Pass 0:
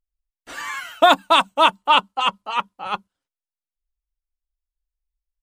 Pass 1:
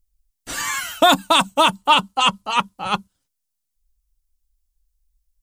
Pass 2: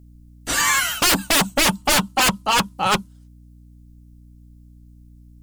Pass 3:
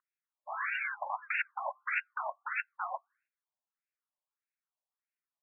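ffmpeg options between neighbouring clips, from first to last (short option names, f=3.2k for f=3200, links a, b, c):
-af "bass=f=250:g=12,treble=f=4k:g=12,alimiter=limit=-7dB:level=0:latency=1:release=22,volume=3dB"
-af "aeval=exprs='0.126*(abs(mod(val(0)/0.126+3,4)-2)-1)':c=same,aeval=exprs='val(0)+0.00251*(sin(2*PI*60*n/s)+sin(2*PI*2*60*n/s)/2+sin(2*PI*3*60*n/s)/3+sin(2*PI*4*60*n/s)/4+sin(2*PI*5*60*n/s)/5)':c=same,volume=7dB"
-af "highpass=f=250:t=q:w=0.5412,highpass=f=250:t=q:w=1.307,lowpass=f=2.9k:t=q:w=0.5176,lowpass=f=2.9k:t=q:w=0.7071,lowpass=f=2.9k:t=q:w=1.932,afreqshift=140,afftfilt=real='re*lt(hypot(re,im),0.355)':imag='im*lt(hypot(re,im),0.355)':win_size=1024:overlap=0.75,afftfilt=real='re*between(b*sr/1024,780*pow(2000/780,0.5+0.5*sin(2*PI*1.6*pts/sr))/1.41,780*pow(2000/780,0.5+0.5*sin(2*PI*1.6*pts/sr))*1.41)':imag='im*between(b*sr/1024,780*pow(2000/780,0.5+0.5*sin(2*PI*1.6*pts/sr))/1.41,780*pow(2000/780,0.5+0.5*sin(2*PI*1.6*pts/sr))*1.41)':win_size=1024:overlap=0.75,volume=-5dB"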